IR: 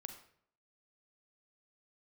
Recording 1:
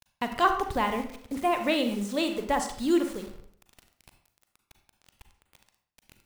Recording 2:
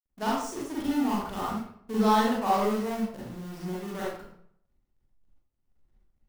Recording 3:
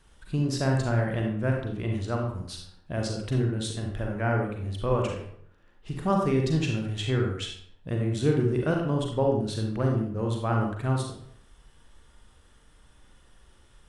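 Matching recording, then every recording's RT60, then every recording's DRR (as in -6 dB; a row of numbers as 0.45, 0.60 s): 1; 0.65, 0.65, 0.65 s; 6.0, -7.0, 0.5 dB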